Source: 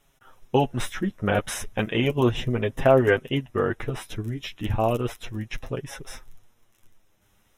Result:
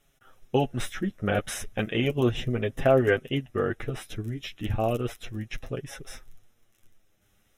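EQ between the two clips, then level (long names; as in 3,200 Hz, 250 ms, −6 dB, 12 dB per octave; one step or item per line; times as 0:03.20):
parametric band 970 Hz −11.5 dB 0.25 octaves
−2.5 dB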